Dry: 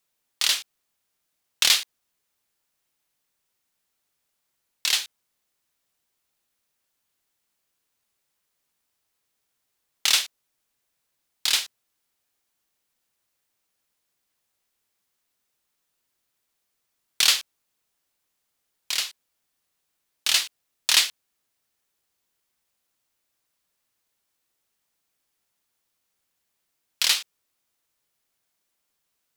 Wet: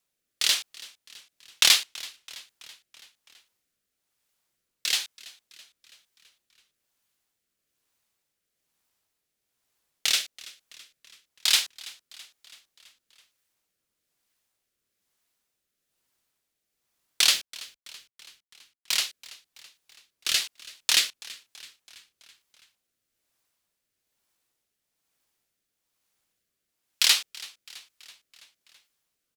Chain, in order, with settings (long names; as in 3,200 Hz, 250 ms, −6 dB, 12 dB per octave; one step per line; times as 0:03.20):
0:17.33–0:18.97: log-companded quantiser 4 bits
rotating-speaker cabinet horn 1.1 Hz
echo with shifted repeats 330 ms, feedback 59%, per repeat −72 Hz, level −20.5 dB
level +1.5 dB